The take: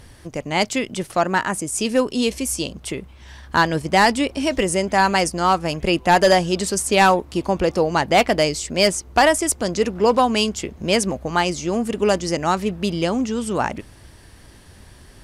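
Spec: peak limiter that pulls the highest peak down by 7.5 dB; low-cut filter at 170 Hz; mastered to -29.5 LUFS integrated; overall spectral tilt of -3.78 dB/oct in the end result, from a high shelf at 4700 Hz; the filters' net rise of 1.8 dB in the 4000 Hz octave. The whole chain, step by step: HPF 170 Hz; bell 4000 Hz +7 dB; high shelf 4700 Hz -8.5 dB; gain -6.5 dB; limiter -16.5 dBFS

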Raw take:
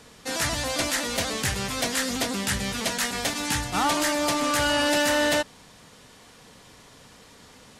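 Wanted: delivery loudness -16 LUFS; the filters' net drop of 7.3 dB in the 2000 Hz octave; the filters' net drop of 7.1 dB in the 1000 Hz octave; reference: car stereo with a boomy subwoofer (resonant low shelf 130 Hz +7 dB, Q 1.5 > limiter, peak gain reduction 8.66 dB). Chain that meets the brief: resonant low shelf 130 Hz +7 dB, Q 1.5; bell 1000 Hz -7 dB; bell 2000 Hz -7 dB; gain +14.5 dB; limiter -7.5 dBFS

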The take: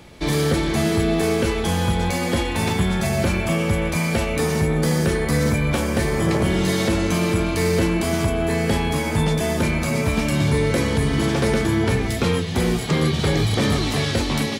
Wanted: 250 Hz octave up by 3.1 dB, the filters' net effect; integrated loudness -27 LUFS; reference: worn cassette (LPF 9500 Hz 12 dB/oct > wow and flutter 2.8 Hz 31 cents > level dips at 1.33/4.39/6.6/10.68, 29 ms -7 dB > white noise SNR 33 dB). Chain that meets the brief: LPF 9500 Hz 12 dB/oct; bell 250 Hz +4.5 dB; wow and flutter 2.8 Hz 31 cents; level dips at 1.33/4.39/6.6/10.68, 29 ms -7 dB; white noise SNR 33 dB; gain -8 dB

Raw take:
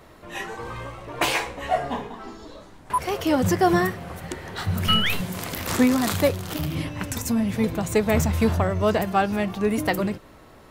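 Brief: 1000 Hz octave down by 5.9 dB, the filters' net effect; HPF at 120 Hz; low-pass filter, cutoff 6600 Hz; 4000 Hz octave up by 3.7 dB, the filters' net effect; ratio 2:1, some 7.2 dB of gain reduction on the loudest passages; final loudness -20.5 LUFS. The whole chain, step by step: HPF 120 Hz; LPF 6600 Hz; bell 1000 Hz -9 dB; bell 4000 Hz +7 dB; compressor 2:1, threshold -28 dBFS; gain +9.5 dB

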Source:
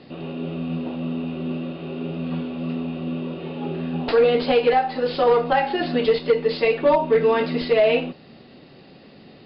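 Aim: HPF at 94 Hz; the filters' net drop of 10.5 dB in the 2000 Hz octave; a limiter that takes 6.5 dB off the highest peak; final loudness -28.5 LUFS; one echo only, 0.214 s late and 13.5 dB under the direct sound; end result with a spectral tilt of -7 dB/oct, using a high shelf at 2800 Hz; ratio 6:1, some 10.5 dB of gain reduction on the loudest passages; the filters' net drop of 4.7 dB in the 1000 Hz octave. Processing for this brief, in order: HPF 94 Hz; bell 1000 Hz -4 dB; bell 2000 Hz -8.5 dB; high shelf 2800 Hz -9 dB; compressor 6:1, threshold -26 dBFS; limiter -24 dBFS; echo 0.214 s -13.5 dB; gain +3 dB

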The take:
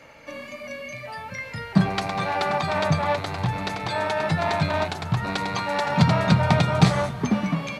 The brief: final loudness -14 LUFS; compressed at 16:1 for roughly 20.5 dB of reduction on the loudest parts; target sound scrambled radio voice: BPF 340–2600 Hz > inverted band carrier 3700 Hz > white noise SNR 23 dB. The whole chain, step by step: compressor 16:1, threshold -32 dBFS; BPF 340–2600 Hz; inverted band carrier 3700 Hz; white noise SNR 23 dB; gain +22 dB

